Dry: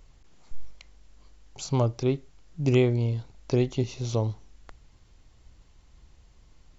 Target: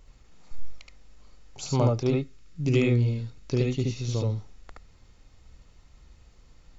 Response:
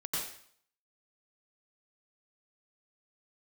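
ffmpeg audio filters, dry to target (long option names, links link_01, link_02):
-filter_complex "[0:a]asettb=1/sr,asplit=3[link_01][link_02][link_03];[link_01]atrim=end=2.144[link_04];[link_02]atrim=start=2.14:end=4.31,asetpts=PTS-STARTPTS,afade=type=in:duration=0.004:curve=qsin,afade=type=out:start_time=2.166:duration=0.004:curve=qsin,equalizer=frequency=730:width_type=o:width=1.2:gain=-10[link_05];[link_03]atrim=start=4.306[link_06];[link_04][link_05]acrossfade=duration=0.004:curve1=hsin:curve2=qsin[link_07];[link_07][link_06]acrossfade=duration=0.004:curve1=qsin:curve2=hsin[link_08];[1:a]atrim=start_sample=2205,atrim=end_sample=3969,asetrate=52920,aresample=44100[link_09];[link_08][link_09]afir=irnorm=-1:irlink=0,volume=5.5dB"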